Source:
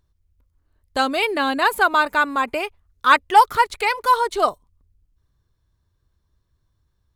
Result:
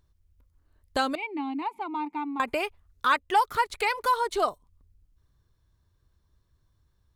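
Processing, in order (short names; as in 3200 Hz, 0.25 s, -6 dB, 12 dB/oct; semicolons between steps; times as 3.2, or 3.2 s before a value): 1.15–2.4 vowel filter u; compressor 2:1, threshold -27 dBFS, peak gain reduction 11 dB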